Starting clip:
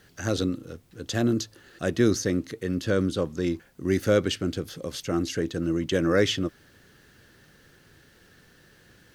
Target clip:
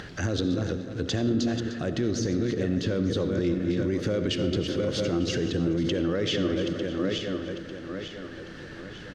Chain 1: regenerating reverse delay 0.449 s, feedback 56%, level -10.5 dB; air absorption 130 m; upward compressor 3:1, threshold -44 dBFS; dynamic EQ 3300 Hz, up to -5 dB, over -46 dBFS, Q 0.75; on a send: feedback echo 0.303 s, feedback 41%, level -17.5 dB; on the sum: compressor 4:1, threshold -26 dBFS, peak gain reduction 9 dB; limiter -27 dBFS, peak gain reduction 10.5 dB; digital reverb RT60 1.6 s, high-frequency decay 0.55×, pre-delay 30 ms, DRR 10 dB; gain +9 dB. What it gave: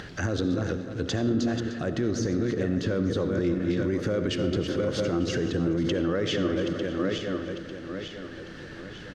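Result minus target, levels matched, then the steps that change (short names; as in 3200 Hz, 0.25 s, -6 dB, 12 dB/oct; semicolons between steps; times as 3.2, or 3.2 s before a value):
4000 Hz band -2.5 dB
change: dynamic EQ 1300 Hz, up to -5 dB, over -46 dBFS, Q 0.75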